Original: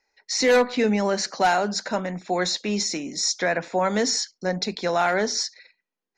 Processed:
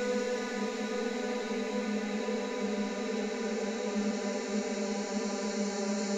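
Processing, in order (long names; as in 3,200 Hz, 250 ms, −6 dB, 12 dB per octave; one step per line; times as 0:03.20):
parametric band 7,000 Hz +9 dB 0.42 octaves
reversed playback
downward compressor 6 to 1, threshold −31 dBFS, peak gain reduction 15 dB
reversed playback
surface crackle 150 per second −55 dBFS
extreme stretch with random phases 21×, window 1.00 s, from 0:00.71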